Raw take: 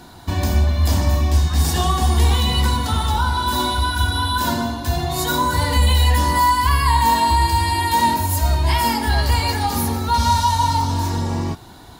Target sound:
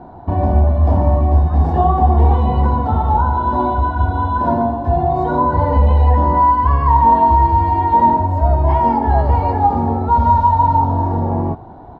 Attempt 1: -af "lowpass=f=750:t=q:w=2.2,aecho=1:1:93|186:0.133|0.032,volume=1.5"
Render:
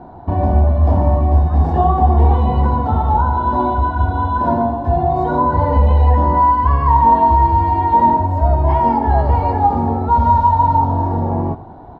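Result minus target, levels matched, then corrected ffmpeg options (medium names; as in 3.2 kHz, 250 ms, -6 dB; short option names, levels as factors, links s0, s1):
echo-to-direct +7 dB
-af "lowpass=f=750:t=q:w=2.2,aecho=1:1:93|186:0.0596|0.0143,volume=1.5"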